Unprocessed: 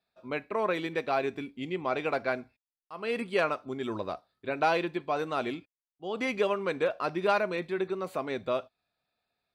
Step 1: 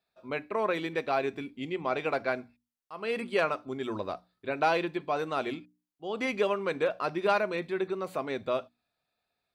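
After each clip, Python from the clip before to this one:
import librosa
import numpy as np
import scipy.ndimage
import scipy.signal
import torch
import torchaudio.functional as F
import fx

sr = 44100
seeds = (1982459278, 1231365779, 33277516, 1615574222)

y = fx.hum_notches(x, sr, base_hz=60, count=5)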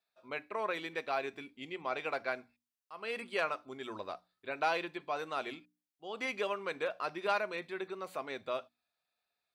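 y = fx.low_shelf(x, sr, hz=450.0, db=-11.5)
y = y * 10.0 ** (-3.0 / 20.0)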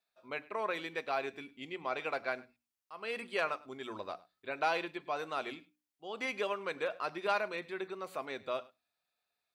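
y = x + 10.0 ** (-21.5 / 20.0) * np.pad(x, (int(103 * sr / 1000.0), 0))[:len(x)]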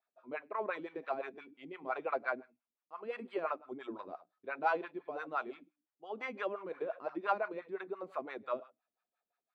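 y = fx.wah_lfo(x, sr, hz=5.8, low_hz=230.0, high_hz=1400.0, q=2.3)
y = y * 10.0 ** (5.5 / 20.0)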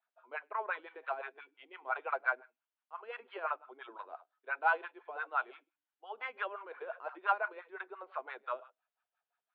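y = fx.cabinet(x, sr, low_hz=480.0, low_slope=24, high_hz=3900.0, hz=(560.0, 920.0, 1500.0, 3000.0), db=(-4, 5, 8, 5))
y = y * 10.0 ** (-1.5 / 20.0)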